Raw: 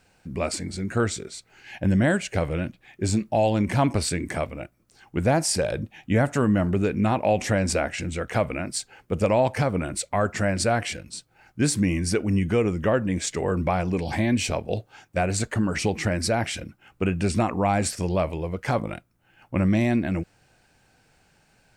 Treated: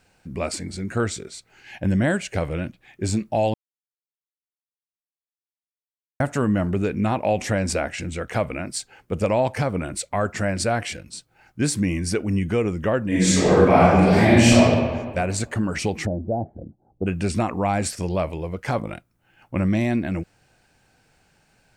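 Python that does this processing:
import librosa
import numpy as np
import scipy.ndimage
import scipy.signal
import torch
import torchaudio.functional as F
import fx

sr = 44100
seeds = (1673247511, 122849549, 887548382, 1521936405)

y = fx.reverb_throw(x, sr, start_s=13.07, length_s=1.59, rt60_s=1.6, drr_db=-10.0)
y = fx.ellip_lowpass(y, sr, hz=770.0, order=4, stop_db=70, at=(16.05, 17.06), fade=0.02)
y = fx.edit(y, sr, fx.silence(start_s=3.54, length_s=2.66), tone=tone)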